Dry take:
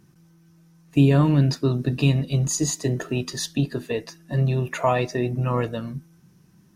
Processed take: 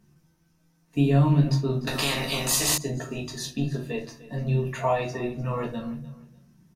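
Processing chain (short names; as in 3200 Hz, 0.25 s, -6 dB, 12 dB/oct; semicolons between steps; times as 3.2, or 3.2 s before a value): doubler 13 ms -8 dB; on a send: feedback echo 0.299 s, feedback 28%, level -18 dB; on the sum: shoebox room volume 180 m³, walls furnished, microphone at 1.6 m; 1.87–2.78 spectral compressor 4:1; gain -8 dB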